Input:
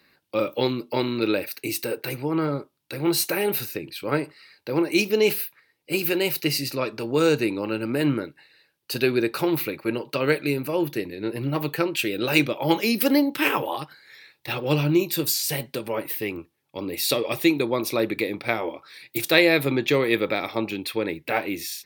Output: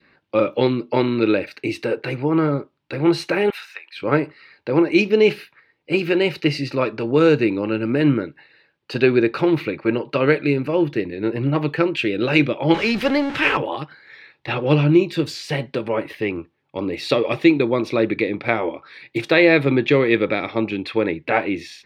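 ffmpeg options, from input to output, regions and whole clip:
ffmpeg -i in.wav -filter_complex "[0:a]asettb=1/sr,asplit=3[link_01][link_02][link_03];[link_01]atrim=end=3.504[link_04];[link_02]atrim=start=3.5:end=3.97,asetpts=PTS-STARTPTS,afade=type=in:duration=0.004:curve=qsin,afade=type=out:start_time=0.466:duration=0.004:curve=qsin,highpass=frequency=1000:width=0.5412,highpass=frequency=1000:width=1.3066,bandreject=frequency=4600:width=12[link_05];[link_03]atrim=start=3.966[link_06];[link_04][link_05]acrossfade=duration=0.004:curve1=hsin:curve2=qsin[link_07];[link_07][link_06]acrossfade=duration=0.004:curve1=qsin:curve2=hsin,asettb=1/sr,asplit=3[link_08][link_09][link_10];[link_08]atrim=end=12.744[link_11];[link_09]atrim=start=12.74:end=13.57,asetpts=PTS-STARTPTS,afade=type=in:duration=0.004:curve=qsin,afade=type=out:start_time=0.826:duration=0.004:curve=qsin,aeval=exprs='val(0)+0.5*0.0631*sgn(val(0))':channel_layout=same,equalizer=frequency=290:width=1.2:gain=-9[link_12];[link_10]atrim=start=13.566[link_13];[link_11][link_12]acrossfade=duration=0.004:curve1=hsin:curve2=qsin[link_14];[link_14][link_13]acrossfade=duration=0.004:curve1=qsin:curve2=hsin,lowpass=2600,adynamicequalizer=threshold=0.0126:dfrequency=880:dqfactor=0.98:tfrequency=880:tqfactor=0.98:attack=5:release=100:ratio=0.375:range=3:mode=cutabove:tftype=bell,alimiter=level_in=7.5dB:limit=-1dB:release=50:level=0:latency=1,volume=-1dB" out.wav

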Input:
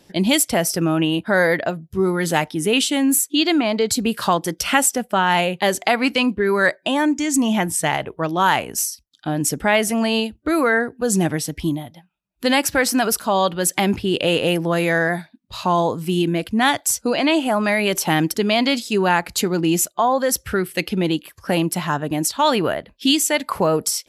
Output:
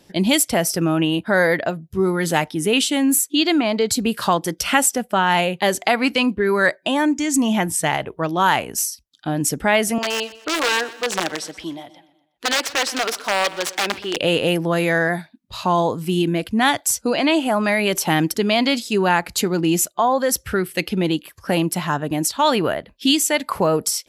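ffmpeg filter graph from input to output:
ffmpeg -i in.wav -filter_complex "[0:a]asettb=1/sr,asplit=3[link_01][link_02][link_03];[link_01]atrim=end=9.984[link_04];[link_02]atrim=start=9.98:end=14.16,asetpts=PTS-STARTPTS,afade=type=in:duration=0.004:curve=qsin,afade=type=out:start_time=4.176:duration=0.004:curve=qsin,aeval=exprs='(mod(3.55*val(0)+1,2)-1)/3.55':channel_layout=same,acrossover=split=360 7200:gain=0.112 1 0.178[link_05][link_06][link_07];[link_05][link_06][link_07]amix=inputs=3:normalize=0,aecho=1:1:123|246|369|492:0.126|0.0617|0.0302|0.0148,atrim=end_sample=184338[link_08];[link_03]atrim=start=14.156[link_09];[link_04][link_08]acrossfade=duration=0.004:curve1=hsin:curve2=qsin[link_10];[link_10][link_09]acrossfade=duration=0.004:curve1=qsin:curve2=hsin" out.wav

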